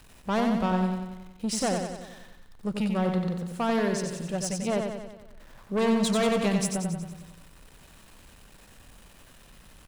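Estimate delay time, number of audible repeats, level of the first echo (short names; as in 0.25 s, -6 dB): 92 ms, 6, -5.0 dB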